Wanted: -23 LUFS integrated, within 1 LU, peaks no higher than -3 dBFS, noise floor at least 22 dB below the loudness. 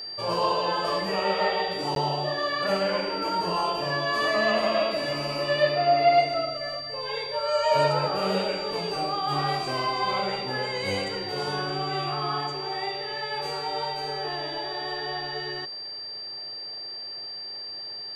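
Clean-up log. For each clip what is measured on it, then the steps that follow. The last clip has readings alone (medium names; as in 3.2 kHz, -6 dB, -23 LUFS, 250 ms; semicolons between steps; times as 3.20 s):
dropouts 1; longest dropout 12 ms; steady tone 4.7 kHz; tone level -34 dBFS; loudness -27.0 LUFS; peak level -10.0 dBFS; loudness target -23.0 LUFS
-> interpolate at 1.95 s, 12 ms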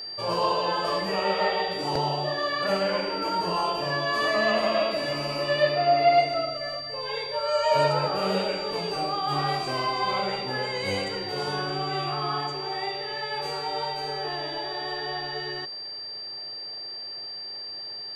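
dropouts 0; steady tone 4.7 kHz; tone level -34 dBFS
-> band-stop 4.7 kHz, Q 30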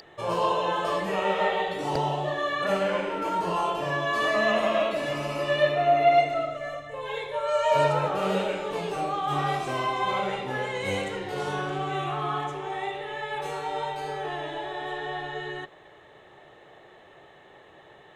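steady tone not found; loudness -27.0 LUFS; peak level -10.0 dBFS; loudness target -23.0 LUFS
-> trim +4 dB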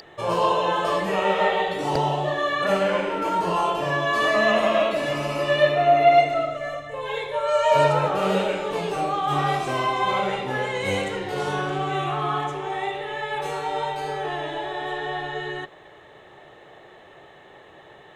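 loudness -23.0 LUFS; peak level -6.0 dBFS; noise floor -48 dBFS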